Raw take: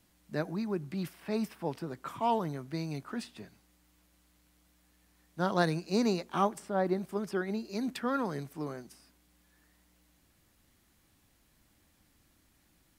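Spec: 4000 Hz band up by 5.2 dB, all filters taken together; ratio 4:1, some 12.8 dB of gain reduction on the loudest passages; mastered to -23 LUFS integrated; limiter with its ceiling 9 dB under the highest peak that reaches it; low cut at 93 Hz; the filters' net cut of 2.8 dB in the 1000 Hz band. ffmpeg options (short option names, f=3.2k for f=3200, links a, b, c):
-af "highpass=93,equalizer=f=1k:t=o:g=-4,equalizer=f=4k:t=o:g=6,acompressor=threshold=-39dB:ratio=4,volume=22.5dB,alimiter=limit=-12.5dB:level=0:latency=1"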